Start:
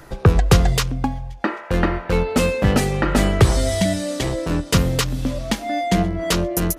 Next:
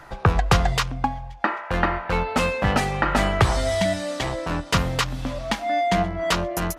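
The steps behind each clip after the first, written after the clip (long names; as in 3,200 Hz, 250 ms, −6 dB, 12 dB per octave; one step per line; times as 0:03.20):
low-pass filter 2,900 Hz 6 dB per octave
low shelf with overshoot 590 Hz −7.5 dB, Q 1.5
level +2 dB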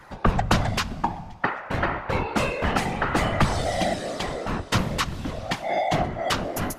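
random phases in short frames
dense smooth reverb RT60 2.3 s, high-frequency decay 0.8×, DRR 19 dB
level −2.5 dB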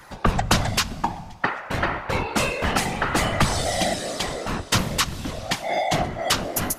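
high-shelf EQ 3,700 Hz +11 dB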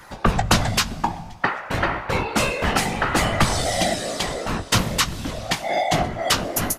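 double-tracking delay 18 ms −12 dB
level +1.5 dB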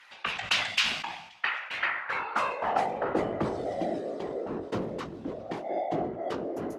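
band-pass filter sweep 2,700 Hz → 390 Hz, 0:01.71–0:03.26
level that may fall only so fast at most 73 dB per second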